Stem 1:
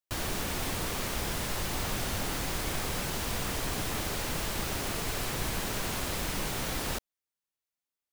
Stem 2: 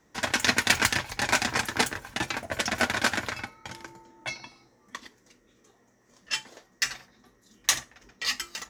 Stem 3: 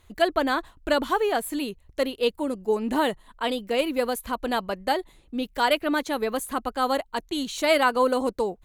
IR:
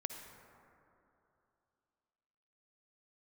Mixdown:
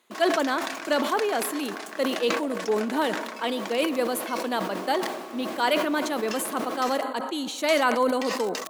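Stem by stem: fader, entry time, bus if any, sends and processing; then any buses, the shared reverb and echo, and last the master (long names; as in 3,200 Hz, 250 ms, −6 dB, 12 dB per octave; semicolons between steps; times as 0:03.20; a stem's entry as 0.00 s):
−6.0 dB, 0.00 s, bus A, no send, high-shelf EQ 5,100 Hz −11.5 dB; noise that follows the level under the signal 20 dB
−9.0 dB, 0.00 s, bus A, no send, high-pass filter 580 Hz; dead-zone distortion −46 dBFS; envelope flattener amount 70%
−4.5 dB, 0.00 s, no bus, send −7.5 dB, no processing
bus A: 0.0 dB, hollow resonant body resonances 340/640/1,100 Hz, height 14 dB; downward compressor 6 to 1, threshold −36 dBFS, peak gain reduction 14 dB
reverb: on, RT60 2.9 s, pre-delay 48 ms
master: Butterworth high-pass 190 Hz 36 dB per octave; level that may fall only so fast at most 50 dB per second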